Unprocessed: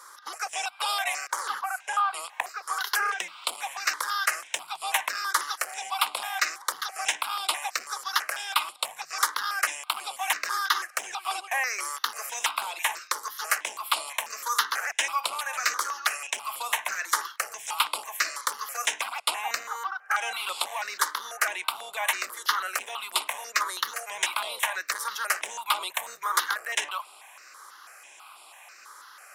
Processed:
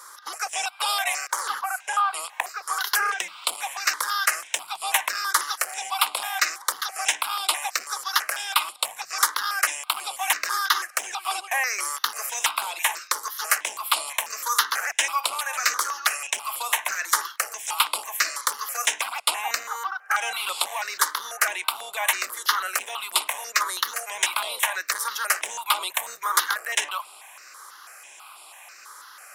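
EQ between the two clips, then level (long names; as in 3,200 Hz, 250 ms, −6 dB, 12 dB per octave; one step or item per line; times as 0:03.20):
high-pass filter 140 Hz 6 dB per octave
high-shelf EQ 6,600 Hz +5 dB
mains-hum notches 50/100/150/200 Hz
+2.5 dB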